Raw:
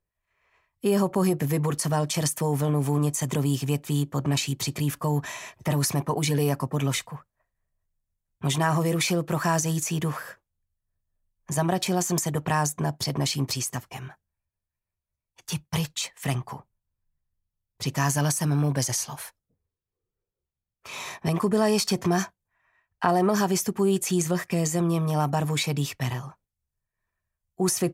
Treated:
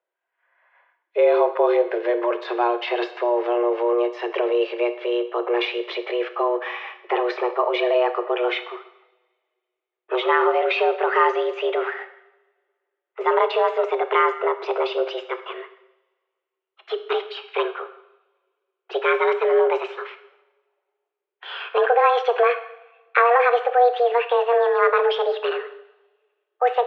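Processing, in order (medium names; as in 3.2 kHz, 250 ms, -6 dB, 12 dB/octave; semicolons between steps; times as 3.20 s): gliding tape speed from 71% -> 137%; mistuned SSB +240 Hz 150–3000 Hz; two-slope reverb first 0.79 s, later 2 s, from -22 dB, DRR 9 dB; trim +6 dB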